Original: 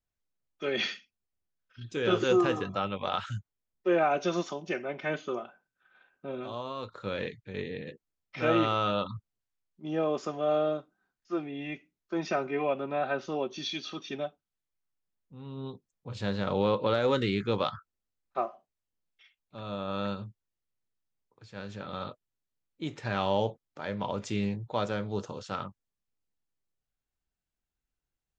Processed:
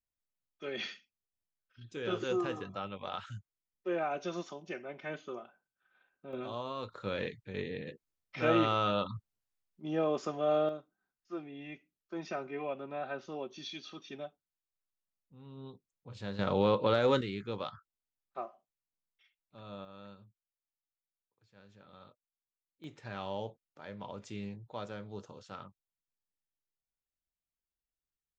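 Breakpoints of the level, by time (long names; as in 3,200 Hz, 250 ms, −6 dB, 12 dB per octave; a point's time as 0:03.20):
−8.5 dB
from 0:06.33 −2 dB
from 0:10.69 −8.5 dB
from 0:16.39 −1 dB
from 0:17.21 −9.5 dB
from 0:19.85 −18.5 dB
from 0:22.84 −11 dB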